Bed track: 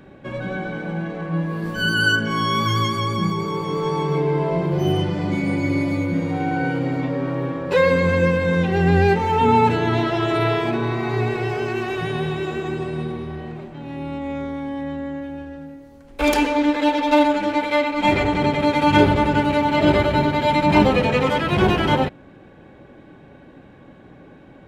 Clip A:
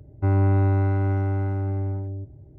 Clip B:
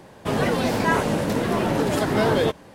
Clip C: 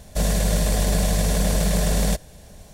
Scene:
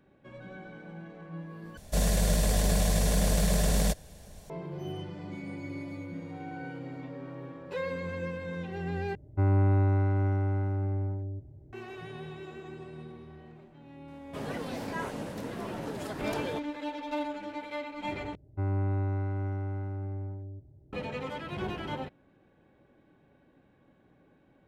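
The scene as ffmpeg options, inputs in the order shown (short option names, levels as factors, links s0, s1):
-filter_complex "[1:a]asplit=2[s0][s1];[0:a]volume=0.126,asplit=4[s2][s3][s4][s5];[s2]atrim=end=1.774[s6];[3:a]atrim=end=2.73,asetpts=PTS-STARTPTS,volume=0.562[s7];[s3]atrim=start=4.496:end=9.154[s8];[s0]atrim=end=2.58,asetpts=PTS-STARTPTS,volume=0.596[s9];[s4]atrim=start=11.726:end=18.354[s10];[s1]atrim=end=2.58,asetpts=PTS-STARTPTS,volume=0.316[s11];[s5]atrim=start=20.926[s12];[2:a]atrim=end=2.74,asetpts=PTS-STARTPTS,volume=0.178,afade=t=in:d=0.004:c=hsin,afade=t=out:st=2.736:d=0.004:c=hsin,adelay=14080[s13];[s6][s7]acrossfade=d=0.004:c1=hsin:c2=hsin[s14];[s14][s8]acrossfade=d=0.004:c1=hsin:c2=hsin[s15];[s15][s9]acrossfade=d=0.004:c1=hsin:c2=hsin[s16];[s16][s10]acrossfade=d=0.004:c1=hsin:c2=hsin[s17];[s17][s11]acrossfade=d=0.004:c1=hsin:c2=hsin[s18];[s18][s12]acrossfade=d=0.004:c1=hsin:c2=hsin[s19];[s19][s13]amix=inputs=2:normalize=0"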